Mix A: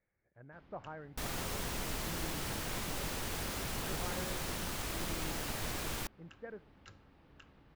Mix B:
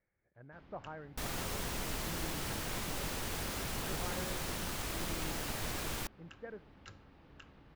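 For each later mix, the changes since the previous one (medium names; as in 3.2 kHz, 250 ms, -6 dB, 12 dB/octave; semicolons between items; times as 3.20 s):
first sound +3.0 dB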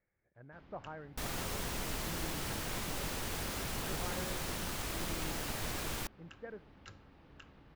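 no change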